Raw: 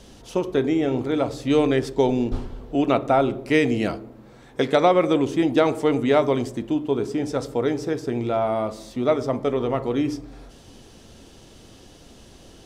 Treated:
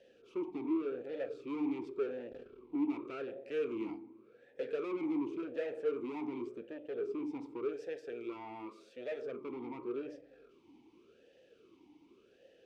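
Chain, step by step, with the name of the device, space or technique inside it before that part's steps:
0:07.73–0:09.22: spectral tilt +2.5 dB per octave
talk box (tube saturation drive 26 dB, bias 0.65; formant filter swept between two vowels e-u 0.88 Hz)

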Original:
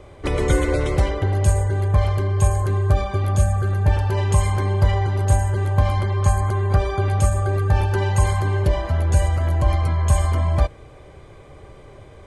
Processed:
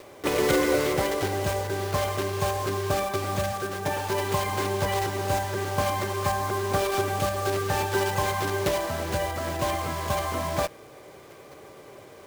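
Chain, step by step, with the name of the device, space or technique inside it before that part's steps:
0:03.51–0:04.50: high-pass filter 170 Hz → 59 Hz 12 dB per octave
early digital voice recorder (band-pass filter 220–3,500 Hz; one scale factor per block 3 bits)

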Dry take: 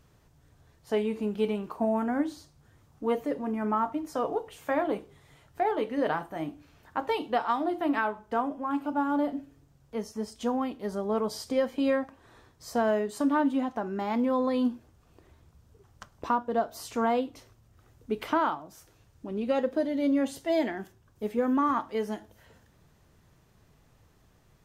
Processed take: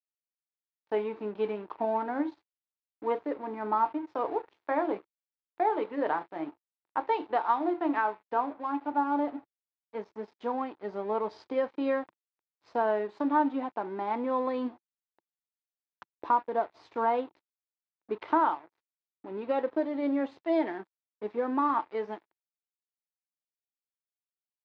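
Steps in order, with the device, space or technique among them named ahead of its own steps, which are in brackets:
blown loudspeaker (dead-zone distortion −45.5 dBFS; loudspeaker in its box 150–3,700 Hz, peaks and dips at 150 Hz −9 dB, 230 Hz −7 dB, 340 Hz +6 dB, 910 Hz +7 dB, 3,000 Hz −6 dB)
level −2 dB

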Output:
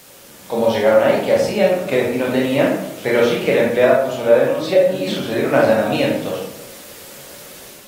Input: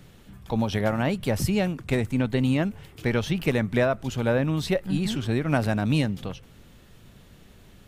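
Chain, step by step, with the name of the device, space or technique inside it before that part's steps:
filmed off a television (band-pass filter 300–6,400 Hz; parametric band 550 Hz +11 dB 0.44 octaves; convolution reverb RT60 0.80 s, pre-delay 21 ms, DRR −3.5 dB; white noise bed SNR 25 dB; automatic gain control gain up to 5.5 dB; AAC 48 kbit/s 48,000 Hz)

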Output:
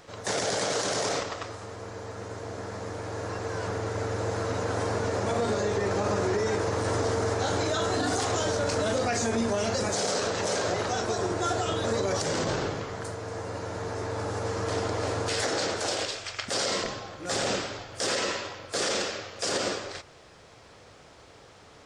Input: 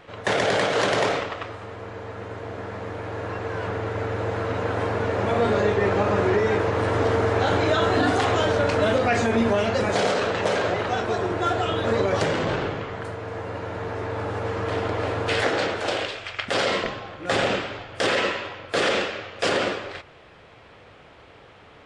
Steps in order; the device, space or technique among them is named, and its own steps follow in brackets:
over-bright horn tweeter (high shelf with overshoot 4,100 Hz +11.5 dB, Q 1.5; brickwall limiter −15.5 dBFS, peak gain reduction 10 dB)
level −3 dB

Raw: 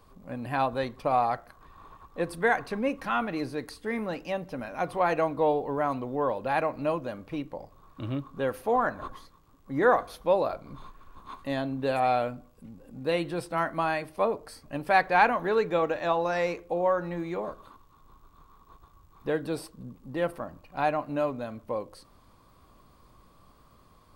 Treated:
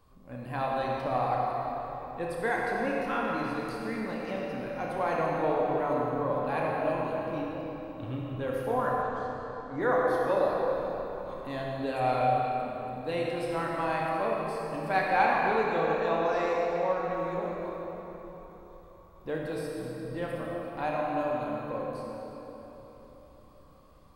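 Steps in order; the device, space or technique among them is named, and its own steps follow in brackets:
tunnel (flutter between parallel walls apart 5.4 metres, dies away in 0.24 s; convolution reverb RT60 4.1 s, pre-delay 48 ms, DRR −2.5 dB)
0:09.02–0:09.80: elliptic low-pass filter 8,600 Hz, stop band 40 dB
low-shelf EQ 150 Hz +3.5 dB
level −7 dB

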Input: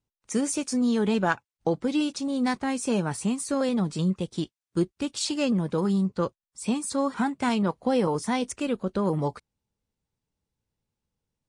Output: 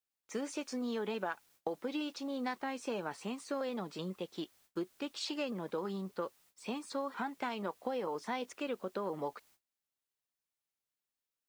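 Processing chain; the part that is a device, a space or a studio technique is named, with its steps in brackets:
baby monitor (band-pass filter 380–3,900 Hz; downward compressor 10 to 1, threshold −28 dBFS, peak gain reduction 10.5 dB; white noise bed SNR 29 dB; noise gate −60 dBFS, range −24 dB)
level −4.5 dB

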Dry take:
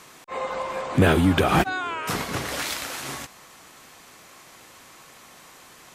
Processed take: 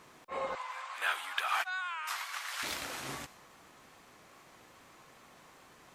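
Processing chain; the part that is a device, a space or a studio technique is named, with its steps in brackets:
0:00.55–0:02.63: high-pass filter 1,000 Hz 24 dB per octave
plain cassette with noise reduction switched in (one half of a high-frequency compander decoder only; tape wow and flutter; white noise bed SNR 41 dB)
high-shelf EQ 4,800 Hz −4.5 dB
level −6.5 dB

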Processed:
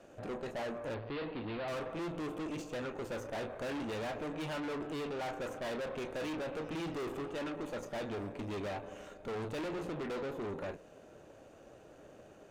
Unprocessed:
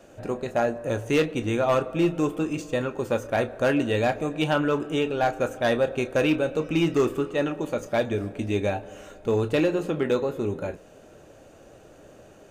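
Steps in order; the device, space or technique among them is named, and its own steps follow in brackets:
tube preamp driven hard (tube saturation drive 35 dB, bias 0.75; low-shelf EQ 120 Hz −5 dB; high-shelf EQ 4,800 Hz −6.5 dB)
0:00.94–0:01.68: elliptic low-pass filter 4,400 Hz, stop band 40 dB
level −1 dB

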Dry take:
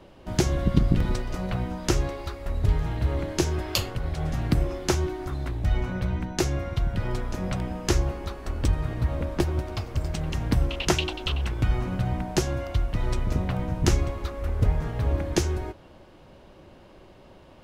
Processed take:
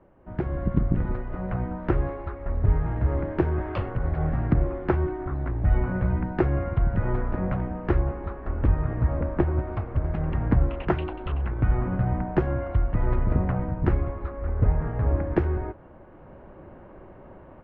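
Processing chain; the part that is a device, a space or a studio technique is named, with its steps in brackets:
action camera in a waterproof case (low-pass filter 1,800 Hz 24 dB per octave; automatic gain control gain up to 11.5 dB; level −7 dB; AAC 64 kbit/s 24,000 Hz)

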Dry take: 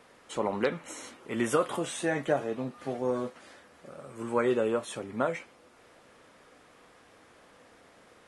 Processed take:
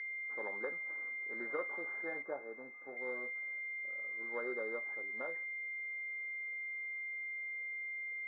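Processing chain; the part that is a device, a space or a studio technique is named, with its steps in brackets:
toy sound module (linearly interpolated sample-rate reduction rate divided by 4×; switching amplifier with a slow clock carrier 2,100 Hz; loudspeaker in its box 670–4,400 Hz, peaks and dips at 680 Hz −10 dB, 1,000 Hz −7 dB, 1,700 Hz +8 dB, 2,700 Hz −10 dB, 3,900 Hz −5 dB)
0:02.22–0:02.97: flat-topped bell 3,300 Hz −12 dB
level −4.5 dB

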